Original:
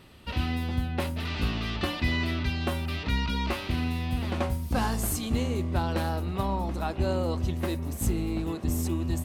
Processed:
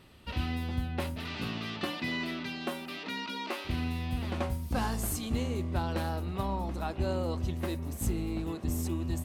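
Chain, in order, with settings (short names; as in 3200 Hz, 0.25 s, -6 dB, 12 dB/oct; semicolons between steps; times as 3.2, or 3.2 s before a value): 1.15–3.64 HPF 92 Hz -> 290 Hz 24 dB/oct; gain -4 dB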